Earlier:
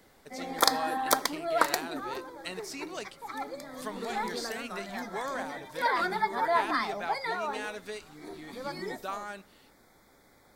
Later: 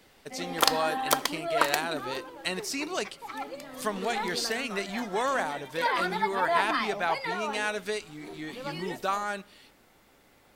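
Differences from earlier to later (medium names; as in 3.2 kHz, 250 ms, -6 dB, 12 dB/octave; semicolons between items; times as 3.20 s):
speech +8.0 dB; background: remove Butterworth band-stop 2.8 kHz, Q 2.5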